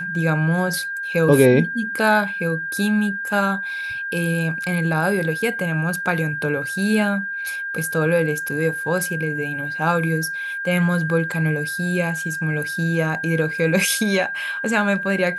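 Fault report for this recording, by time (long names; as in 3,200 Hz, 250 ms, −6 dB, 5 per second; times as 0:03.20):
whistle 1,600 Hz −25 dBFS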